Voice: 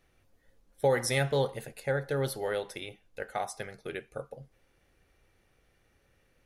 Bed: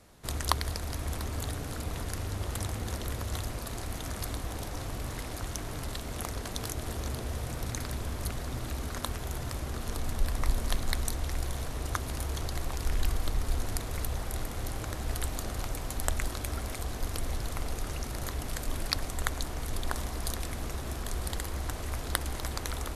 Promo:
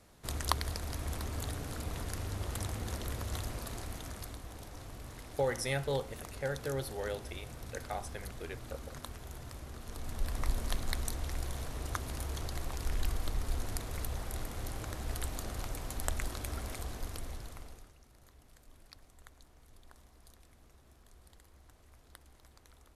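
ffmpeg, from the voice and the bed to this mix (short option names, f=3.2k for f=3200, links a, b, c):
-filter_complex "[0:a]adelay=4550,volume=-6dB[a];[1:a]volume=2.5dB,afade=t=out:st=3.64:d=0.75:silence=0.446684,afade=t=in:st=9.87:d=0.52:silence=0.501187,afade=t=out:st=16.76:d=1.17:silence=0.0891251[b];[a][b]amix=inputs=2:normalize=0"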